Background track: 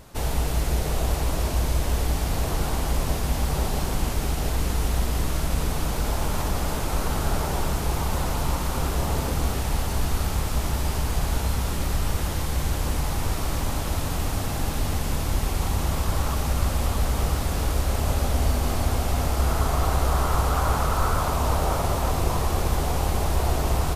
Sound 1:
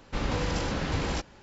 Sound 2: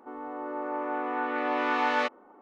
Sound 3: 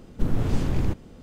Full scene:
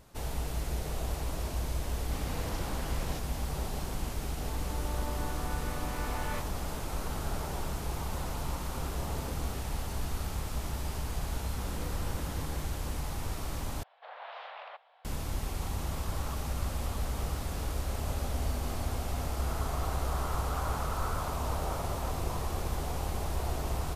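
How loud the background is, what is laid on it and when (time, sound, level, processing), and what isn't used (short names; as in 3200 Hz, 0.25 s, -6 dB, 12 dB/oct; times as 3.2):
background track -10 dB
1.98 add 1 -11.5 dB
4.32 add 2 -11.5 dB + vocal rider within 3 dB
11.45 add 1 -12.5 dB + LPF 1700 Hz 24 dB/oct
13.83 replace with 3 -5.5 dB + mistuned SSB +250 Hz 480–3600 Hz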